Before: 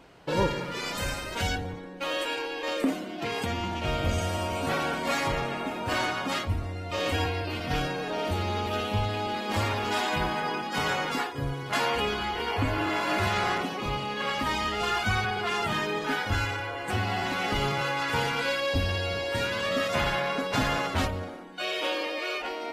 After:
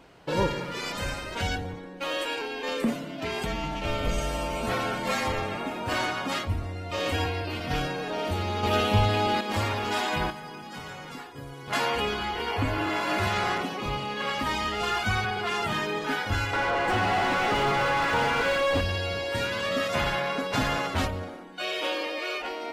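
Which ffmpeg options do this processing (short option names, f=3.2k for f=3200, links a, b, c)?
-filter_complex "[0:a]asettb=1/sr,asplit=3[a][b][c];[a]atrim=end=0.924[d];[b]atrim=start=0.92:end=1.52,asetpts=PTS-STARTPTS,afade=t=in:d=0.004:c=qsin,afade=t=out:st=0.596:d=0.004:c=qsin,highshelf=f=8k:g=-8.5[e];[c]atrim=start=1.516[f];[d][e]acrossfade=d=0.004:c1=hsin:c2=qsin[g];[g][f]acrossfade=d=0.004:c1=qsin:c2=hsin,asettb=1/sr,asplit=3[h][i][j];[h]atrim=end=2.414[k];[i]atrim=start=2.41:end=5.58,asetpts=PTS-STARTPTS,afade=t=in:d=0.004:c=qsin,afade=t=out:st=3.166:d=0.004:c=qsin,afreqshift=-39[l];[j]atrim=start=5.576[m];[k][l]acrossfade=d=0.004:c1=hsin:c2=qsin[n];[n][m]acrossfade=d=0.004:c1=qsin:c2=hsin,asettb=1/sr,asplit=3[o][p][q];[o]atrim=end=8.634[r];[p]atrim=start=8.63:end=9.41,asetpts=PTS-STARTPTS,afade=t=in:d=0.004:c=qsin,afade=t=out:st=0.776:d=0.004:c=qsin,acontrast=47[s];[q]atrim=start=9.406[t];[r][s]acrossfade=d=0.004:c1=hsin:c2=qsin[u];[u][t]acrossfade=d=0.004:c1=qsin:c2=hsin,asettb=1/sr,asplit=3[v][w][x];[v]atrim=end=10.304[y];[w]atrim=start=10.3:end=11.68,asetpts=PTS-STARTPTS,afade=t=in:d=0.004:c=qsin,afade=t=out:st=1.376:d=0.004:c=qsin,acrossover=split=180|5700[z][aa][ab];[z]acompressor=threshold=-46dB:ratio=4[ac];[aa]acompressor=threshold=-41dB:ratio=4[ad];[ab]acompressor=threshold=-56dB:ratio=4[ae];[ac][ad][ae]amix=inputs=3:normalize=0[af];[x]atrim=start=11.676[ag];[y][af]acrossfade=d=0.004:c1=hsin:c2=qsin[ah];[ah][ag]acrossfade=d=0.004:c1=qsin:c2=hsin,asettb=1/sr,asplit=3[ai][aj][ak];[ai]atrim=end=16.534[al];[aj]atrim=start=16.53:end=18.81,asetpts=PTS-STARTPTS,afade=t=in:d=0.004:c=qsin,afade=t=out:st=2.276:d=0.004:c=qsin,asplit=2[am][an];[an]highpass=f=720:p=1,volume=27dB,asoftclip=type=tanh:threshold=-15dB[ao];[am][ao]amix=inputs=2:normalize=0,lowpass=f=1.1k:p=1,volume=-6dB[ap];[ak]atrim=start=18.806[aq];[al][ap]acrossfade=d=0.004:c1=hsin:c2=qsin[ar];[ar][aq]acrossfade=d=0.004:c1=qsin:c2=hsin"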